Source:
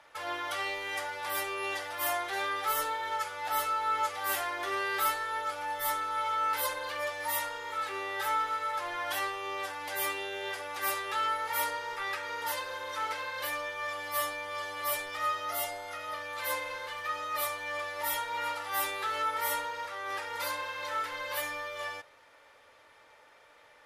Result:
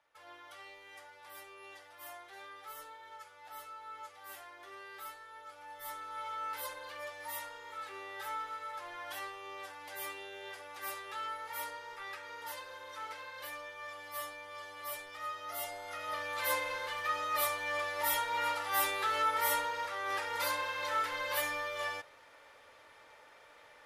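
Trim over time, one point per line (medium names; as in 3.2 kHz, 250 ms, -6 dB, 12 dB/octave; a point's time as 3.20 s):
5.35 s -17.5 dB
6.22 s -9.5 dB
15.31 s -9.5 dB
16.20 s +0.5 dB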